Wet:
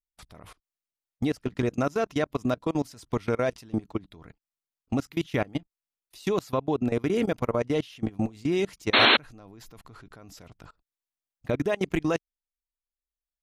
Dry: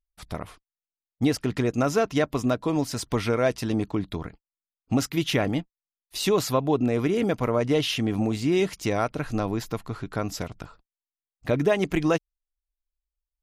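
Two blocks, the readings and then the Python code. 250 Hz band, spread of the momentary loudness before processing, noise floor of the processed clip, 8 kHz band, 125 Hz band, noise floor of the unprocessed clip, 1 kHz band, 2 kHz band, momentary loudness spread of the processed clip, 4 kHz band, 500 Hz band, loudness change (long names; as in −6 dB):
−3.5 dB, 12 LU, below −85 dBFS, −11.5 dB, −5.0 dB, below −85 dBFS, −1.0 dB, +3.5 dB, 9 LU, +3.5 dB, −3.5 dB, −1.5 dB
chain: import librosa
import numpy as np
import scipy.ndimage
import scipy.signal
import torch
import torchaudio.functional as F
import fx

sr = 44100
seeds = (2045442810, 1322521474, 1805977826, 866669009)

y = fx.level_steps(x, sr, step_db=24)
y = fx.spec_paint(y, sr, seeds[0], shape='noise', start_s=8.93, length_s=0.24, low_hz=210.0, high_hz=4300.0, level_db=-18.0)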